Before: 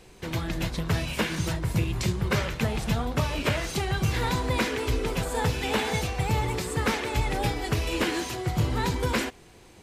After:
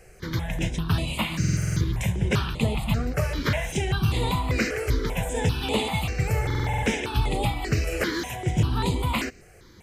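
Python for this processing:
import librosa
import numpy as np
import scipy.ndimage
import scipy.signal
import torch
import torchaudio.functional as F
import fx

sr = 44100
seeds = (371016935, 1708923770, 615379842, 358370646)

y = fx.buffer_glitch(x, sr, at_s=(1.39, 6.41), block=2048, repeats=8)
y = fx.phaser_held(y, sr, hz=5.1, low_hz=980.0, high_hz=5600.0)
y = y * 10.0 ** (3.5 / 20.0)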